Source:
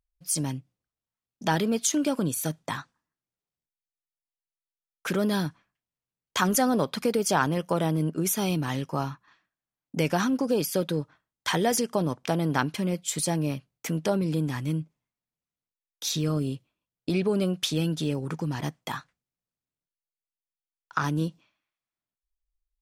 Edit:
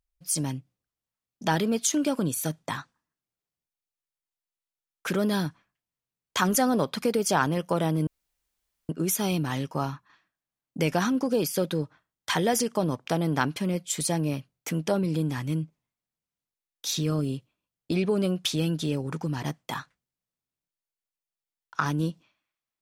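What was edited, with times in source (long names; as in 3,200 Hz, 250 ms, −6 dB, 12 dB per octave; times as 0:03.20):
0:08.07: splice in room tone 0.82 s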